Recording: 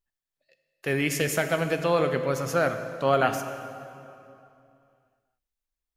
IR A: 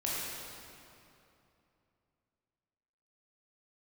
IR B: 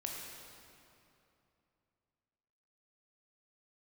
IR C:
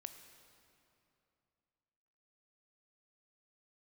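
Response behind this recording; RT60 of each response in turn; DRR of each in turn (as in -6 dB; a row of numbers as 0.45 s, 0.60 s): C; 2.8 s, 2.8 s, 2.8 s; -7.0 dB, -1.5 dB, 7.5 dB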